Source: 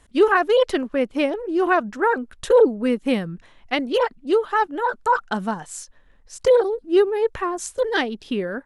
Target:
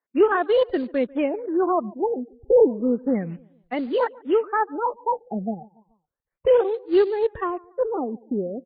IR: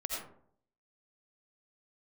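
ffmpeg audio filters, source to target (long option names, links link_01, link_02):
-filter_complex "[0:a]deesser=0.9,acrossover=split=300|2500[link_01][link_02][link_03];[link_01]aeval=exprs='sgn(val(0))*max(abs(val(0))-0.00316,0)':channel_layout=same[link_04];[link_04][link_02][link_03]amix=inputs=3:normalize=0,afftdn=noise_reduction=25:noise_floor=-30,highpass=frequency=77:poles=1,lowshelf=frequency=140:gain=6,acrusher=bits=5:mode=log:mix=0:aa=0.000001,lowpass=6100,asplit=2[link_05][link_06];[link_06]adelay=143,lowpass=frequency=1400:poles=1,volume=-23dB,asplit=2[link_07][link_08];[link_08]adelay=143,lowpass=frequency=1400:poles=1,volume=0.44,asplit=2[link_09][link_10];[link_10]adelay=143,lowpass=frequency=1400:poles=1,volume=0.44[link_11];[link_07][link_09][link_11]amix=inputs=3:normalize=0[link_12];[link_05][link_12]amix=inputs=2:normalize=0,afftfilt=real='re*lt(b*sr/1024,810*pow(4800/810,0.5+0.5*sin(2*PI*0.32*pts/sr)))':imag='im*lt(b*sr/1024,810*pow(4800/810,0.5+0.5*sin(2*PI*0.32*pts/sr)))':win_size=1024:overlap=0.75,volume=-1.5dB"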